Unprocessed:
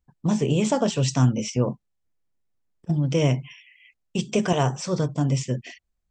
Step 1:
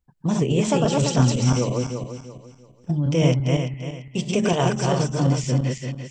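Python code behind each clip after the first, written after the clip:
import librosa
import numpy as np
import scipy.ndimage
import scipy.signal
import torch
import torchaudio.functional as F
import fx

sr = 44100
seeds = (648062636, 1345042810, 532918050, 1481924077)

y = fx.reverse_delay_fb(x, sr, ms=170, feedback_pct=55, wet_db=-1.5)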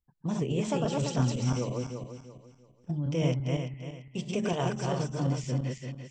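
y = fx.high_shelf(x, sr, hz=6200.0, db=-5.0)
y = y * 10.0 ** (-9.0 / 20.0)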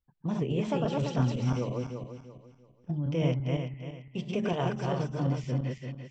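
y = scipy.signal.sosfilt(scipy.signal.butter(2, 3700.0, 'lowpass', fs=sr, output='sos'), x)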